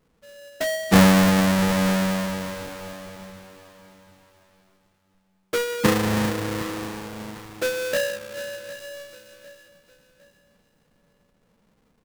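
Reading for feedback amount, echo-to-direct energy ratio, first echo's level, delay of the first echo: 37%, −16.0 dB, −16.5 dB, 755 ms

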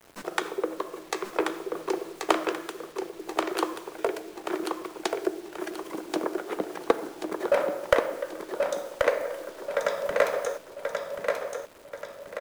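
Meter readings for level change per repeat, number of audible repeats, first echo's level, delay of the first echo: −8.0 dB, 4, −4.5 dB, 1,083 ms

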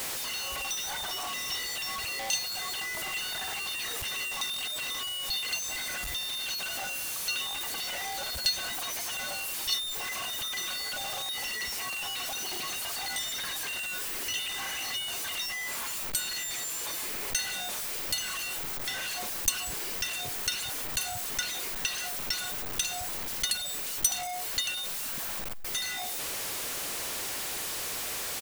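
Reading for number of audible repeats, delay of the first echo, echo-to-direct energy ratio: 2, 185 ms, −23.5 dB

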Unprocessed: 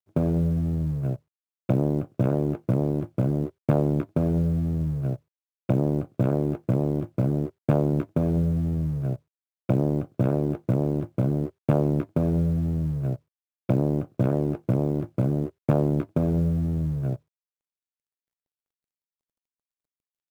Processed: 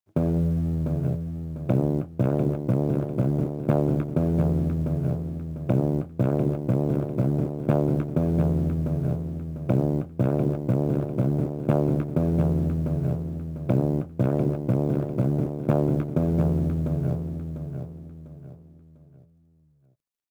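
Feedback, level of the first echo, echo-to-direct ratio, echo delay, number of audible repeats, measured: 34%, −7.0 dB, −6.5 dB, 698 ms, 3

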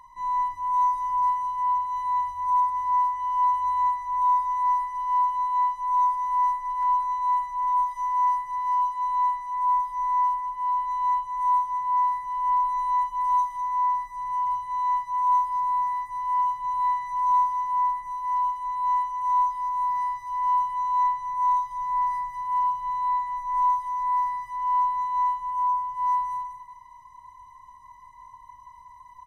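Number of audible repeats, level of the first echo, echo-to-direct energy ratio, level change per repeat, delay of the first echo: 2, −7.0 dB, −7.0 dB, −13.5 dB, 200 ms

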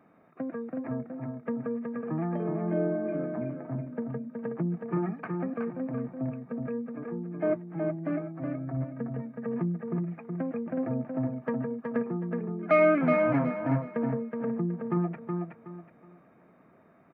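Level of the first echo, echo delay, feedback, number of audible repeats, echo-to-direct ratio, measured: −4.5 dB, 371 ms, 28%, 3, −4.0 dB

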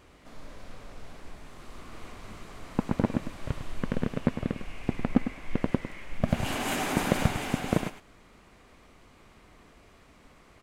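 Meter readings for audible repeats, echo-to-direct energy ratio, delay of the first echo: 1, −10.5 dB, 103 ms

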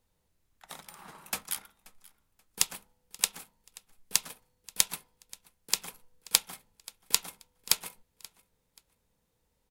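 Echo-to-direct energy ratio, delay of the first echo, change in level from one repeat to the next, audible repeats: −22.0 dB, 531 ms, −11.0 dB, 2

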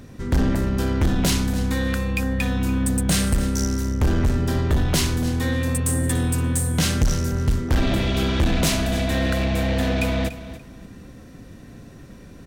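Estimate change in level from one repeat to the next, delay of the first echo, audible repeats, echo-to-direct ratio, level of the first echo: −13.0 dB, 289 ms, 2, −14.5 dB, −14.5 dB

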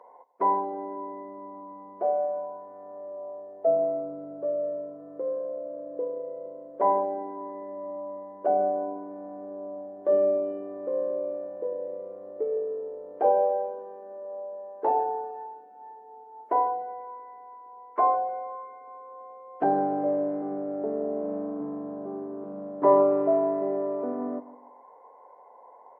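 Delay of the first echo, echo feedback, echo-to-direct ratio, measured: 150 ms, 35%, −17.0 dB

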